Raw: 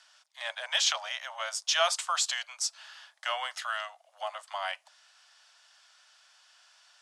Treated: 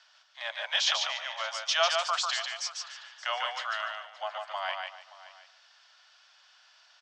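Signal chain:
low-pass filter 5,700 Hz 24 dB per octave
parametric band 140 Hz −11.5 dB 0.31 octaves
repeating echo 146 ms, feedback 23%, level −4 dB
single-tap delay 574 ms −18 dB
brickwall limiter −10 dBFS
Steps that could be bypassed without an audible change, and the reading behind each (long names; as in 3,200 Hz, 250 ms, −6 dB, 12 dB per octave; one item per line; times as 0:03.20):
parametric band 140 Hz: nothing at its input below 450 Hz
brickwall limiter −10 dBFS: peak of its input −12.0 dBFS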